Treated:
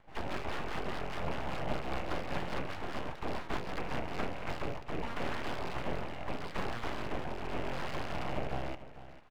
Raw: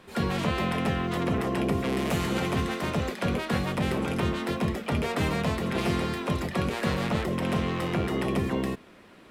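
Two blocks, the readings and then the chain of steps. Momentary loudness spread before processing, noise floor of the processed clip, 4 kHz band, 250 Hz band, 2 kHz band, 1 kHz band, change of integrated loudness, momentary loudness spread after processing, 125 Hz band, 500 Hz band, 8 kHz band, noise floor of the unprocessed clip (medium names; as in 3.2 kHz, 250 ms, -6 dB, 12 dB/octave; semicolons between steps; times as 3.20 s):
2 LU, -48 dBFS, -10.0 dB, -14.5 dB, -8.0 dB, -6.5 dB, -11.0 dB, 3 LU, -13.5 dB, -9.5 dB, -13.5 dB, -52 dBFS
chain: rattle on loud lows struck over -35 dBFS, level -20 dBFS; tone controls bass -10 dB, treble -14 dB; rotary cabinet horn 5 Hz, later 0.8 Hz, at 3.88 s; tape spacing loss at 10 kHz 42 dB; delay 446 ms -14.5 dB; full-wave rectifier; trim +1 dB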